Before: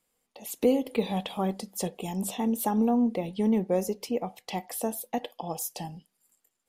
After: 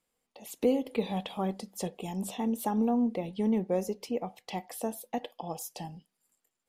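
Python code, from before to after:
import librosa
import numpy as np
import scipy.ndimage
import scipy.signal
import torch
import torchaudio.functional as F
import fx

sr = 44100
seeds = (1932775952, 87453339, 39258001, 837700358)

y = fx.high_shelf(x, sr, hz=8300.0, db=-6.5)
y = y * 10.0 ** (-3.0 / 20.0)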